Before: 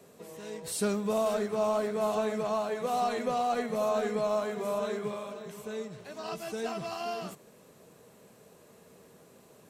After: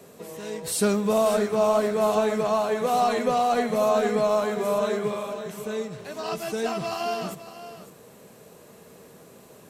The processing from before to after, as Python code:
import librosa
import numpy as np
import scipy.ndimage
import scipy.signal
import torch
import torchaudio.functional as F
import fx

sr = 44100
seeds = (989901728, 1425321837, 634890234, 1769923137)

p1 = fx.peak_eq(x, sr, hz=12000.0, db=2.5, octaves=0.26)
p2 = p1 + fx.echo_single(p1, sr, ms=556, db=-13.5, dry=0)
y = p2 * librosa.db_to_amplitude(7.0)